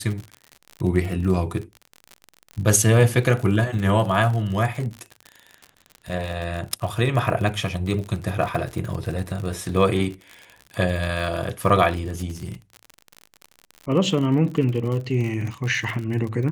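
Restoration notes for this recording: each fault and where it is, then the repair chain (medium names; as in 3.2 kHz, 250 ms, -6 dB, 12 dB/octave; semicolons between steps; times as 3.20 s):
crackle 52 per s -28 dBFS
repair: de-click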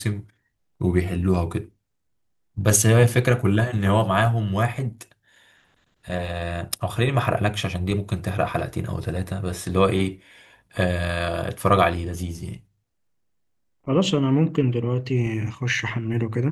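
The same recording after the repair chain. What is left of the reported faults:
nothing left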